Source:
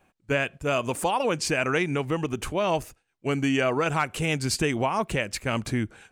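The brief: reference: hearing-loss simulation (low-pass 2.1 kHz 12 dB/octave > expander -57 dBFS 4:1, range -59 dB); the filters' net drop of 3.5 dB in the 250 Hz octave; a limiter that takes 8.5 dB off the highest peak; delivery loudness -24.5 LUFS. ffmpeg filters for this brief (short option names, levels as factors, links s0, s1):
-af "equalizer=f=250:t=o:g=-4.5,alimiter=limit=0.0944:level=0:latency=1,lowpass=2100,agate=range=0.00112:threshold=0.00141:ratio=4,volume=2.51"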